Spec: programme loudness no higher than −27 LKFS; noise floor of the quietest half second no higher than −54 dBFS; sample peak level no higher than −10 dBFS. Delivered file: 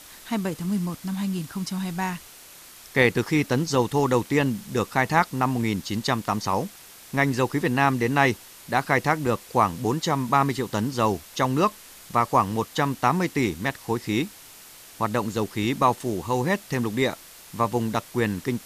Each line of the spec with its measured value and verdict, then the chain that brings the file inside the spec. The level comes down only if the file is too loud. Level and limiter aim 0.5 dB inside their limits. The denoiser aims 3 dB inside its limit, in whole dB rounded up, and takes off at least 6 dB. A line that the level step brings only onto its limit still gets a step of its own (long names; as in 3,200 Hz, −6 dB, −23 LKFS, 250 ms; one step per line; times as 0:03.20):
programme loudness −24.5 LKFS: out of spec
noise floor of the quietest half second −47 dBFS: out of spec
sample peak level −5.0 dBFS: out of spec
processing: broadband denoise 7 dB, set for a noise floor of −47 dBFS
level −3 dB
brickwall limiter −10.5 dBFS